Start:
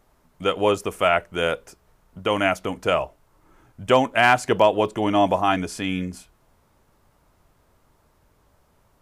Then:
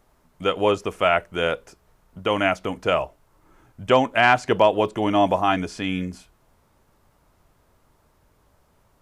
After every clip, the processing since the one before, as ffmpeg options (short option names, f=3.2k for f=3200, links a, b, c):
-filter_complex "[0:a]acrossover=split=6600[a][b];[b]acompressor=threshold=-55dB:ratio=4:attack=1:release=60[c];[a][c]amix=inputs=2:normalize=0"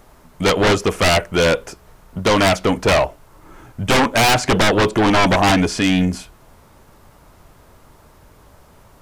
-af "aeval=exprs='(tanh(5.01*val(0)+0.55)-tanh(0.55))/5.01':c=same,aeval=exprs='0.299*sin(PI/2*3.98*val(0)/0.299)':c=same"